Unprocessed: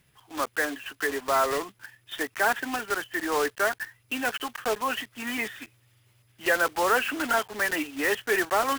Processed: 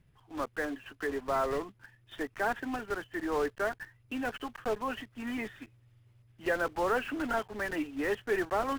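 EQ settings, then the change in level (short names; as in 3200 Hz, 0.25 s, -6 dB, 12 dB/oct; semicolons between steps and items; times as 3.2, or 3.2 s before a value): tilt -3 dB/oct; -7.0 dB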